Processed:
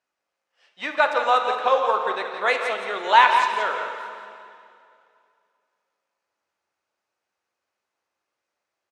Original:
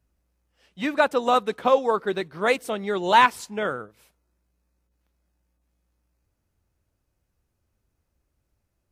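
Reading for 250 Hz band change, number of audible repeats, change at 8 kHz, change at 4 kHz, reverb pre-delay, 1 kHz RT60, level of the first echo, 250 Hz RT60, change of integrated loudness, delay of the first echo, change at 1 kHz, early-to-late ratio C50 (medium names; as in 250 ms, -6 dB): -12.0 dB, 1, no reading, +2.5 dB, 7 ms, 2.4 s, -8.5 dB, 2.6 s, +2.0 dB, 172 ms, +3.0 dB, 4.0 dB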